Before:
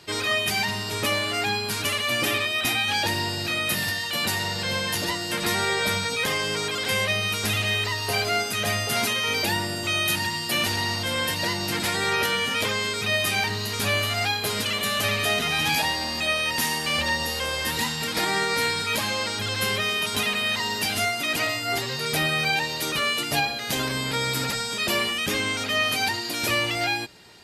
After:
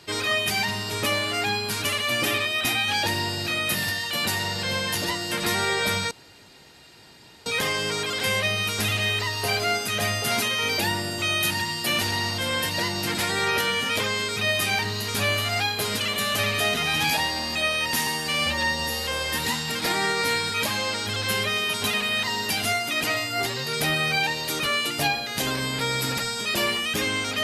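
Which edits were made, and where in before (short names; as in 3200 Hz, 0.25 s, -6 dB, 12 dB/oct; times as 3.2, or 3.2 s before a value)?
6.11 insert room tone 1.35 s
16.72–17.37 stretch 1.5×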